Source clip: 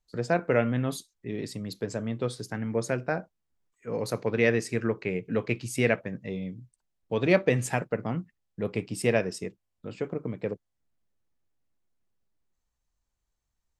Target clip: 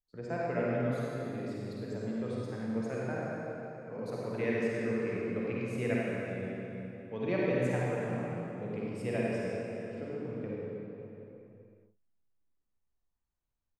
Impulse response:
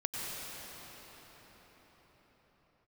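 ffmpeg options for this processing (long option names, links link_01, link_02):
-filter_complex "[0:a]highshelf=frequency=4000:gain=-11,asplit=2[link_01][link_02];[link_02]adelay=49,volume=-14dB[link_03];[link_01][link_03]amix=inputs=2:normalize=0[link_04];[1:a]atrim=start_sample=2205,asetrate=88200,aresample=44100[link_05];[link_04][link_05]afir=irnorm=-1:irlink=0,volume=-5dB"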